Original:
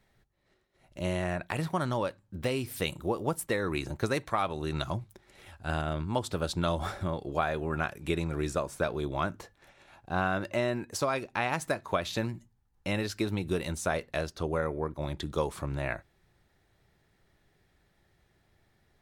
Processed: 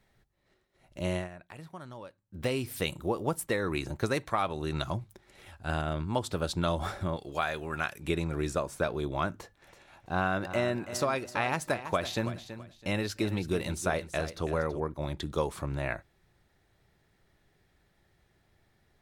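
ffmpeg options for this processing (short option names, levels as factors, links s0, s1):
-filter_complex "[0:a]asettb=1/sr,asplit=3[s0][s1][s2];[s0]atrim=end=7.164[s3];[s1]atrim=start=7.16:end=7.99,asetpts=PTS-STARTPTS,afade=t=in:d=0.004:c=qsin,afade=t=out:st=0.826:d=0.004:c=qsin,tiltshelf=f=1300:g=-6[s4];[s2]atrim=start=7.986[s5];[s3][s4]acrossfade=d=0.004:c1=hsin:c2=qsin[s6];[s6][s5]acrossfade=d=0.004:c1=qsin:c2=hsin,asettb=1/sr,asplit=3[s7][s8][s9];[s7]atrim=end=9.374[s10];[s8]atrim=start=9.37:end=14.8,asetpts=PTS-STARTPTS,afade=t=in:d=0.004:c=qsin,afade=t=out:st=5.426:d=0.004:c=qsin,aecho=1:1:329|658|987:0.251|0.0678|0.0183,atrim=end_sample=239463[s11];[s9]atrim=start=14.796[s12];[s10][s11]acrossfade=d=0.004:c1=hsin:c2=qsin[s13];[s13][s12]acrossfade=d=0.004:c1=qsin:c2=hsin,asplit=3[s14][s15][s16];[s14]atrim=end=1.29,asetpts=PTS-STARTPTS,afade=t=out:st=1.16:d=0.13:silence=0.188365[s17];[s15]atrim=start=1.29:end=2.29,asetpts=PTS-STARTPTS,volume=0.188[s18];[s16]atrim=start=2.29,asetpts=PTS-STARTPTS,afade=t=in:d=0.13:silence=0.188365[s19];[s17][s18][s19]concat=n=3:v=0:a=1"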